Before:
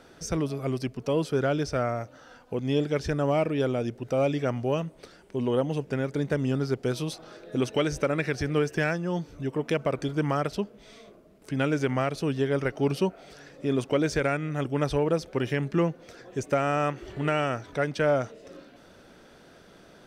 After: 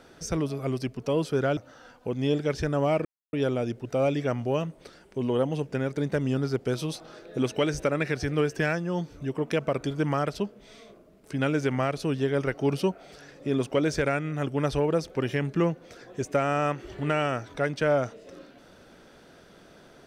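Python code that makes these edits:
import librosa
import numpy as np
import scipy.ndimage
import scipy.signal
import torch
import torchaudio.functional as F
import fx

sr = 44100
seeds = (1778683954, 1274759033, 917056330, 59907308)

y = fx.edit(x, sr, fx.cut(start_s=1.57, length_s=0.46),
    fx.insert_silence(at_s=3.51, length_s=0.28), tone=tone)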